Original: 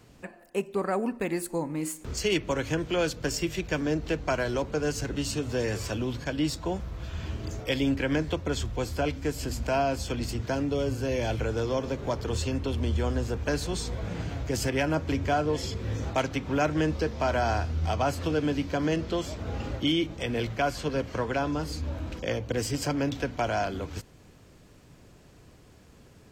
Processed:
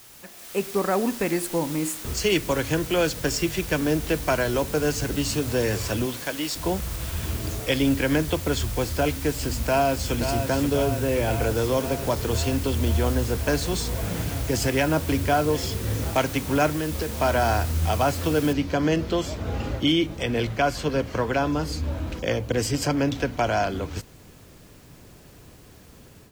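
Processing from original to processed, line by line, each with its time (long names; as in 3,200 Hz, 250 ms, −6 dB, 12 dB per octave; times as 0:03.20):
0:06.05–0:06.55: high-pass filter 260 Hz → 990 Hz 6 dB per octave
0:09.51–0:10.17: delay throw 530 ms, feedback 75%, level −7.5 dB
0:10.84–0:11.42: Savitzky-Golay smoothing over 25 samples
0:16.68–0:17.09: downward compressor, threshold −28 dBFS
0:18.53: noise floor change −43 dB −63 dB
whole clip: automatic gain control gain up to 11 dB; level −6 dB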